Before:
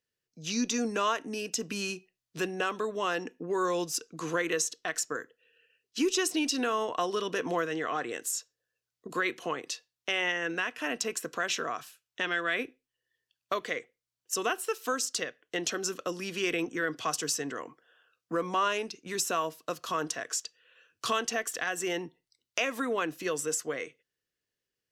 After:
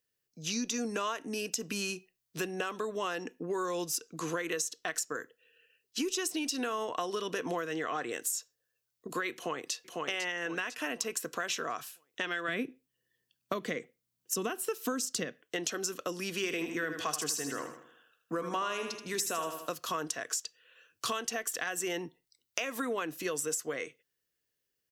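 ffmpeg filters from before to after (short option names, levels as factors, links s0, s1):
-filter_complex "[0:a]asplit=2[s0][s1];[s1]afade=t=in:st=9.34:d=0.01,afade=t=out:st=9.74:d=0.01,aecho=0:1:500|1000|1500|2000|2500:0.668344|0.23392|0.0818721|0.0286552|0.0100293[s2];[s0][s2]amix=inputs=2:normalize=0,asettb=1/sr,asplit=3[s3][s4][s5];[s3]atrim=end=12.484[s6];[s4]atrim=start=12.48:end=15.42,asetpts=PTS-STARTPTS,afade=t=in:d=0.004:c=qsin,afade=t=out:st=2.936:d=0.004:c=qsin,equalizer=f=190:t=o:w=1.6:g=15[s7];[s5]atrim=start=15.416[s8];[s6][s7]acrossfade=d=0.004:c1=hsin:c2=qsin[s9];[s9][s8]acrossfade=d=0.004:c1=qsin:c2=hsin,asettb=1/sr,asplit=3[s10][s11][s12];[s10]atrim=end=16.364[s13];[s11]atrim=start=16.36:end=19.72,asetpts=PTS-STARTPTS,afade=t=in:d=0.004:c=qsin,afade=t=out:st=3.356:d=0.004:c=qsin,aecho=1:1:79|158|237|316|395:0.355|0.163|0.0751|0.0345|0.0159,atrim=end_sample=148176[s14];[s12]atrim=start=19.716[s15];[s13][s14]acrossfade=d=0.004:c1=hsin:c2=qsin[s16];[s16][s15]acrossfade=d=0.004:c1=qsin:c2=hsin,highshelf=f=10000:g=11,acompressor=threshold=0.0316:ratio=6"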